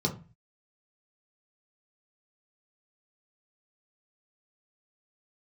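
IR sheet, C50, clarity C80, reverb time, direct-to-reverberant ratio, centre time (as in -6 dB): 12.5 dB, 18.5 dB, 0.30 s, -0.5 dB, 13 ms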